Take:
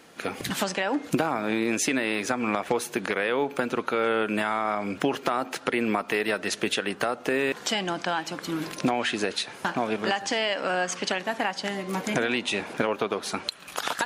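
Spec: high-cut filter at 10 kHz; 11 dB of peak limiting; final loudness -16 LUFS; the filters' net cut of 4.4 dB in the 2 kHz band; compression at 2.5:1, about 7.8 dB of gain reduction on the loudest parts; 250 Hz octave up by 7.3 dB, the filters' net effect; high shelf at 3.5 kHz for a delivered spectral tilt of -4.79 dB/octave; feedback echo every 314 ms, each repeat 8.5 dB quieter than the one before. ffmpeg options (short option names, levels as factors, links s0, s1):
-af "lowpass=10000,equalizer=f=250:t=o:g=9,equalizer=f=2000:t=o:g=-4,highshelf=f=3500:g=-6.5,acompressor=threshold=0.0501:ratio=2.5,alimiter=limit=0.0708:level=0:latency=1,aecho=1:1:314|628|942|1256:0.376|0.143|0.0543|0.0206,volume=6.68"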